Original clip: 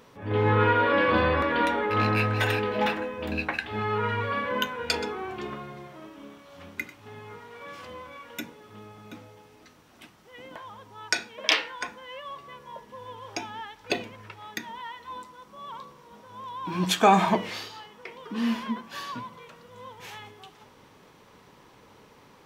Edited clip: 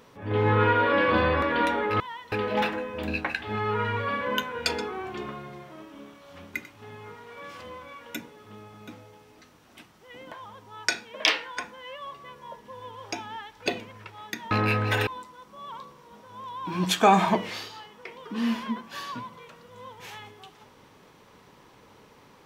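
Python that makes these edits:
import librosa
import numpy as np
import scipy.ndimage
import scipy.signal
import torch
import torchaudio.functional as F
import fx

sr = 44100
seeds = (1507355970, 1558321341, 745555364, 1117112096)

y = fx.edit(x, sr, fx.swap(start_s=2.0, length_s=0.56, other_s=14.75, other_length_s=0.32), tone=tone)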